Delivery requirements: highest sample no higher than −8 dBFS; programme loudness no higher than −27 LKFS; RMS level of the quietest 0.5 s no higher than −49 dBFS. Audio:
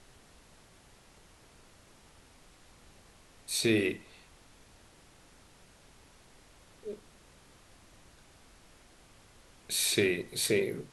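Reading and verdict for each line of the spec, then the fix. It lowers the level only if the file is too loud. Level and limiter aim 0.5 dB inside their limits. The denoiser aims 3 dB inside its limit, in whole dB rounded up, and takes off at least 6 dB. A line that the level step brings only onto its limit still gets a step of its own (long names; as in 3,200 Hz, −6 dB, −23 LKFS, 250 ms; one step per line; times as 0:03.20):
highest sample −14.5 dBFS: in spec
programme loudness −30.0 LKFS: in spec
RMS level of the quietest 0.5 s −59 dBFS: in spec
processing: no processing needed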